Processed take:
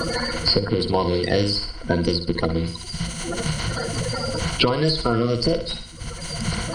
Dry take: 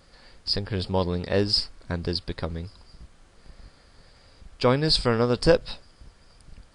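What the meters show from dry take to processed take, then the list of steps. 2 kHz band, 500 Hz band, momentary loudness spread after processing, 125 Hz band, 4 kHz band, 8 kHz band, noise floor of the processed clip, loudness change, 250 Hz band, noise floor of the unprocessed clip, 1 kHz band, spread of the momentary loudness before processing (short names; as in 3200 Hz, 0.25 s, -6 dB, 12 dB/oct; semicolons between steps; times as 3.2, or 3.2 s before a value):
+6.0 dB, +2.5 dB, 9 LU, +5.5 dB, +4.5 dB, +12.5 dB, -35 dBFS, +2.0 dB, +5.5 dB, -56 dBFS, +5.5 dB, 14 LU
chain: bin magnitudes rounded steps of 30 dB; ripple EQ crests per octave 1.9, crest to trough 11 dB; limiter -14.5 dBFS, peak gain reduction 11 dB; flutter echo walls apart 10.1 m, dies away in 0.39 s; three-band squash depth 100%; gain +5.5 dB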